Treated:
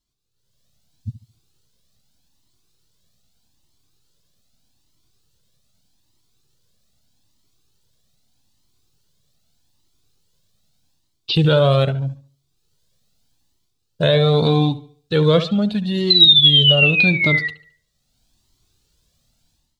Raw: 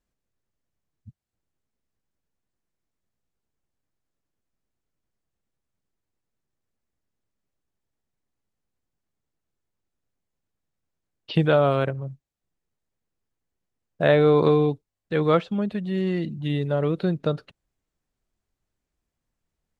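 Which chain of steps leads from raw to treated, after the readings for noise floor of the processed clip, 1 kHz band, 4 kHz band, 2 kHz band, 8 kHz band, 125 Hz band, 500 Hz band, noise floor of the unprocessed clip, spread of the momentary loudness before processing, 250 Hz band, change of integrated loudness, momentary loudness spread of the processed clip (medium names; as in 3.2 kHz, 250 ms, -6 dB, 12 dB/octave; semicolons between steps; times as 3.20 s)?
-70 dBFS, +1.0 dB, +26.0 dB, +13.5 dB, no reading, +7.5 dB, +2.5 dB, -84 dBFS, 11 LU, +4.5 dB, +8.5 dB, 14 LU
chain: treble shelf 2.1 kHz +9 dB; painted sound fall, 16.10–17.48 s, 1.9–4.1 kHz -18 dBFS; graphic EQ 125/250/2000/4000 Hz +7/+3/-7/+10 dB; feedback echo behind a low-pass 72 ms, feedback 33%, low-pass 3.2 kHz, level -14 dB; peak limiter -8 dBFS, peak gain reduction 5.5 dB; level rider gain up to 15.5 dB; Shepard-style flanger rising 0.81 Hz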